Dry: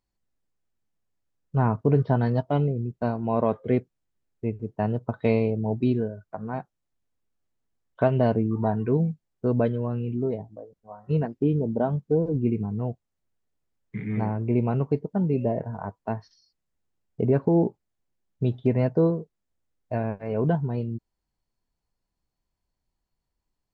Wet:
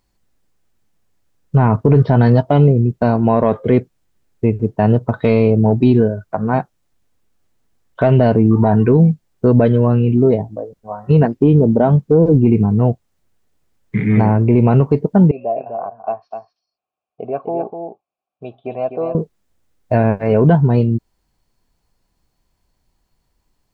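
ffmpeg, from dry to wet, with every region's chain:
-filter_complex "[0:a]asettb=1/sr,asplit=3[s0][s1][s2];[s0]atrim=end=15.314[s3];[s1]atrim=start=15.31:end=19.15,asetpts=PTS-STARTPTS,afade=t=in:d=0.004:c=qsin,afade=t=out:st=3.836:d=0.004:c=qsin,asplit=3[s4][s5][s6];[s4]bandpass=f=730:t=q:w=8,volume=1[s7];[s5]bandpass=f=1090:t=q:w=8,volume=0.501[s8];[s6]bandpass=f=2440:t=q:w=8,volume=0.355[s9];[s7][s8][s9]amix=inputs=3:normalize=0,aecho=1:1:252:0.447,atrim=end_sample=169344[s10];[s2]atrim=start=19.146[s11];[s3][s10]acrossfade=d=0.004:c1=hsin:c2=qsin[s12];[s12][s11]acrossfade=d=0.004:c1=qsin:c2=hsin,acontrast=69,alimiter=level_in=3.35:limit=0.891:release=50:level=0:latency=1,volume=0.794"

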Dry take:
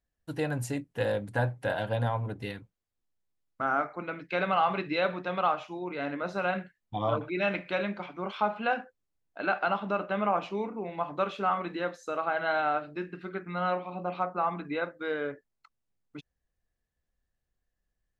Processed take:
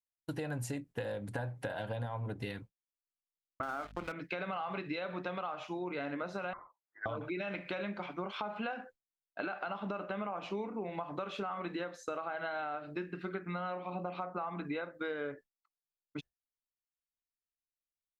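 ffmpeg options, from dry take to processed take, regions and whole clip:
-filter_complex "[0:a]asettb=1/sr,asplit=3[s0][s1][s2];[s0]atrim=end=3.634[s3];[s1]atrim=start=3.63:end=4.12,asetpts=PTS-STARTPTS,afade=t=in:d=0.004:c=qsin,afade=t=out:st=0.486:d=0.004:c=qsin,acontrast=31,aeval=exprs='sgn(val(0))*max(abs(val(0))-0.0119,0)':c=same,aeval=exprs='val(0)+0.00282*(sin(2*PI*50*n/s)+sin(2*PI*2*50*n/s)/2+sin(2*PI*3*50*n/s)/3+sin(2*PI*4*50*n/s)/4+sin(2*PI*5*50*n/s)/5)':c=same[s4];[s2]atrim=start=4.116[s5];[s3][s4]acrossfade=d=0.004:c1=hsin:c2=qsin[s6];[s6][s5]acrossfade=d=0.004:c1=qsin:c2=hsin,asettb=1/sr,asplit=3[s7][s8][s9];[s7]atrim=end=6.534[s10];[s8]atrim=start=6.53:end=7.06,asetpts=PTS-STARTPTS,afade=t=in:d=0.004:c=qsin,afade=t=out:st=0.526:d=0.004:c=qsin,highpass=f=1300:w=0.5412,highpass=f=1300:w=1.3066,lowpass=f=2300:t=q:w=0.5098,lowpass=f=2300:t=q:w=0.6013,lowpass=f=2300:t=q:w=0.9,lowpass=f=2300:t=q:w=2.563,afreqshift=-2700,acompressor=mode=upward:threshold=0.002:ratio=2.5:attack=3.2:release=140:knee=2.83:detection=peak[s11];[s9]atrim=start=7.056[s12];[s10][s11]acrossfade=d=0.004:c1=hsin:c2=qsin[s13];[s13][s12]acrossfade=d=0.004:c1=qsin:c2=hsin,agate=range=0.0224:threshold=0.00708:ratio=3:detection=peak,alimiter=limit=0.0668:level=0:latency=1:release=131,acompressor=threshold=0.0126:ratio=6,volume=1.41"

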